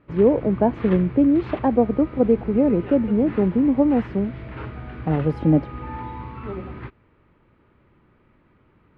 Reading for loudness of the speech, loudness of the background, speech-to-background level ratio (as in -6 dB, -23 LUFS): -20.5 LUFS, -35.0 LUFS, 14.5 dB